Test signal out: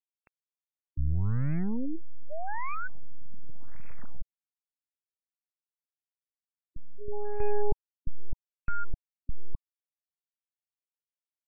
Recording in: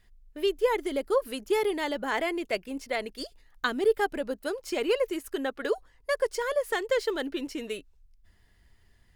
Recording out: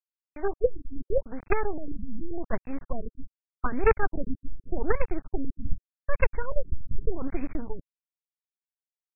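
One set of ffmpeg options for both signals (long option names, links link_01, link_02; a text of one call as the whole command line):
ffmpeg -i in.wav -af "acrusher=bits=4:dc=4:mix=0:aa=0.000001,asubboost=boost=5:cutoff=220,afftfilt=real='re*lt(b*sr/1024,280*pow(2700/280,0.5+0.5*sin(2*PI*0.84*pts/sr)))':imag='im*lt(b*sr/1024,280*pow(2700/280,0.5+0.5*sin(2*PI*0.84*pts/sr)))':win_size=1024:overlap=0.75,volume=2dB" out.wav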